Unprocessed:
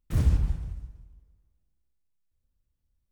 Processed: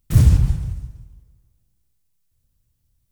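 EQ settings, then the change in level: peaking EQ 120 Hz +9.5 dB 1 oct; treble shelf 4.2 kHz +10.5 dB; +6.0 dB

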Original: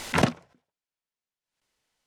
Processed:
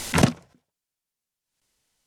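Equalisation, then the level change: bass shelf 310 Hz +8.5 dB; peaking EQ 11 kHz +10 dB 2.2 oct; -1.0 dB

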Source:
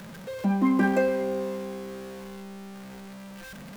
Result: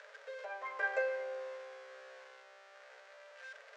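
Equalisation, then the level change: rippled Chebyshev high-pass 420 Hz, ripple 9 dB; low-pass 6.8 kHz 24 dB/octave; -3.5 dB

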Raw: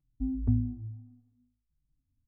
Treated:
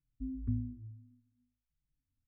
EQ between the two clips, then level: Butterworth band-stop 670 Hz, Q 0.57; distance through air 460 m; bass shelf 420 Hz -10.5 dB; +2.0 dB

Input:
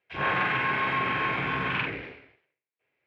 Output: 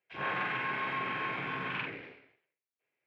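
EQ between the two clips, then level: high-pass 130 Hz 12 dB/octave; -7.5 dB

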